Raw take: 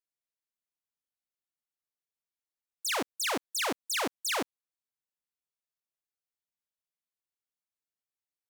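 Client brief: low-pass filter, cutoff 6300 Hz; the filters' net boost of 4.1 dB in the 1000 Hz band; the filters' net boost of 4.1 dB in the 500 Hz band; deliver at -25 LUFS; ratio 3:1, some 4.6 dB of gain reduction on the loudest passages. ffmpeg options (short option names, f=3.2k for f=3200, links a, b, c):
-af "lowpass=6.3k,equalizer=f=500:t=o:g=4,equalizer=f=1k:t=o:g=4,acompressor=threshold=-31dB:ratio=3,volume=9dB"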